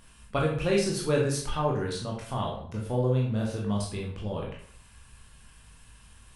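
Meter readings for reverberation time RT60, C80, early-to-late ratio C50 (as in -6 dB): 0.55 s, 8.5 dB, 4.5 dB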